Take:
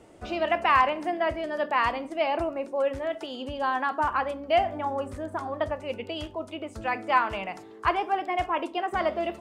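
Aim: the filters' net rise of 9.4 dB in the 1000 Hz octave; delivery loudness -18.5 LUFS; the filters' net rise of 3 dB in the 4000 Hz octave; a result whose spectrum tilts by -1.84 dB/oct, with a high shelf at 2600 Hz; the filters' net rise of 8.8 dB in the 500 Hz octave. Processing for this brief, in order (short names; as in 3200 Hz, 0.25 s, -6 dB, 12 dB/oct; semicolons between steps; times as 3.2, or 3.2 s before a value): bell 500 Hz +8 dB; bell 1000 Hz +9 dB; high shelf 2600 Hz -3.5 dB; bell 4000 Hz +7 dB; gain +1 dB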